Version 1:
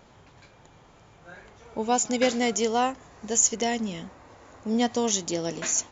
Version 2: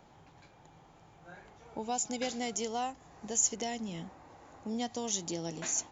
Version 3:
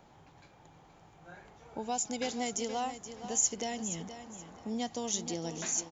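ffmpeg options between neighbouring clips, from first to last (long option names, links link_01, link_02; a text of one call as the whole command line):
ffmpeg -i in.wav -filter_complex "[0:a]equalizer=frequency=160:width_type=o:width=0.33:gain=6,equalizer=frequency=315:width_type=o:width=0.33:gain=5,equalizer=frequency=800:width_type=o:width=0.33:gain=8,acrossover=split=120|3000[link_01][link_02][link_03];[link_02]acompressor=threshold=-31dB:ratio=2[link_04];[link_01][link_04][link_03]amix=inputs=3:normalize=0,volume=-7dB" out.wav
ffmpeg -i in.wav -af "aecho=1:1:475|950|1425:0.282|0.0733|0.0191" out.wav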